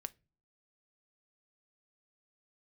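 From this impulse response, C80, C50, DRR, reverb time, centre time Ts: 32.0 dB, 25.0 dB, 12.5 dB, no single decay rate, 2 ms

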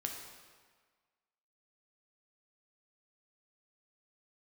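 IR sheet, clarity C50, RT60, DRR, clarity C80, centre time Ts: 4.0 dB, 1.6 s, 1.5 dB, 5.5 dB, 50 ms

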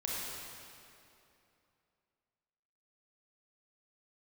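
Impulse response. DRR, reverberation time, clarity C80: -5.5 dB, 2.8 s, -1.5 dB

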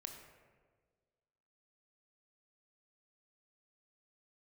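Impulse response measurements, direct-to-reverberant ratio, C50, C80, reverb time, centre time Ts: 3.5 dB, 5.0 dB, 6.5 dB, 1.6 s, 39 ms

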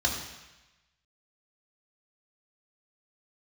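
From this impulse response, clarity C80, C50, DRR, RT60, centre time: 7.0 dB, 5.5 dB, 0.0 dB, 1.0 s, 35 ms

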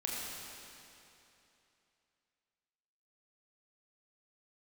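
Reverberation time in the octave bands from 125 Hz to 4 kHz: 2.9 s, 2.9 s, 2.9 s, 2.9 s, 2.8 s, 2.7 s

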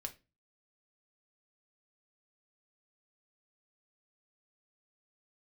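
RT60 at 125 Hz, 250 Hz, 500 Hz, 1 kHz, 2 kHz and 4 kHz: 0.50 s, 0.40 s, 0.30 s, 0.25 s, 0.25 s, 0.25 s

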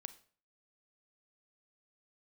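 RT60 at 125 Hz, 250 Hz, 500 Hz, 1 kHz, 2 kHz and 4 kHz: 0.50 s, 0.50 s, 0.45 s, 0.45 s, 0.40 s, 0.40 s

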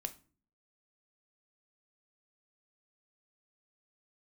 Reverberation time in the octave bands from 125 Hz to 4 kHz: 0.65 s, 0.65 s, 0.45 s, 0.35 s, 0.30 s, 0.30 s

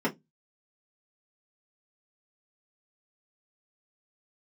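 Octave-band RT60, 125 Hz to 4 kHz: 0.30 s, 0.25 s, 0.20 s, 0.15 s, 0.10 s, 0.10 s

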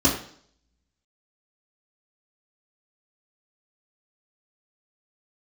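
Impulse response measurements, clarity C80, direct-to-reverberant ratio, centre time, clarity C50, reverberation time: 10.0 dB, -6.5 dB, 37 ms, 6.5 dB, 0.55 s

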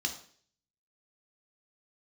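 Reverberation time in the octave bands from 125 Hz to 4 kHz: 0.70 s, 0.55 s, 0.55 s, 0.45 s, 0.50 s, 0.55 s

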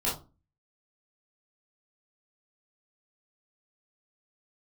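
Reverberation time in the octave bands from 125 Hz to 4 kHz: 0.50 s, 0.45 s, 0.30 s, 0.30 s, 0.20 s, 0.20 s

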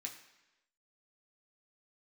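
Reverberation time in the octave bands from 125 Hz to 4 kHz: 0.80 s, 0.95 s, 1.0 s, 1.0 s, 1.0 s, 1.0 s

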